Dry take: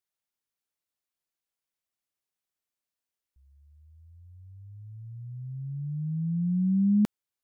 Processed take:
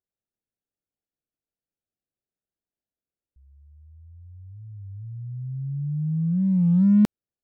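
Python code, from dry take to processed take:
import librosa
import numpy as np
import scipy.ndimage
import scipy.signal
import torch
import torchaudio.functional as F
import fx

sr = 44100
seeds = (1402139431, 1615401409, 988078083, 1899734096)

y = fx.wiener(x, sr, points=41)
y = fx.record_warp(y, sr, rpm=33.33, depth_cents=160.0)
y = F.gain(torch.from_numpy(y), 6.0).numpy()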